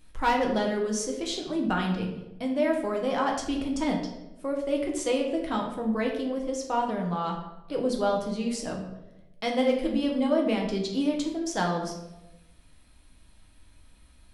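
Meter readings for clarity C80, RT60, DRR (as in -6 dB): 8.0 dB, 1.0 s, 0.0 dB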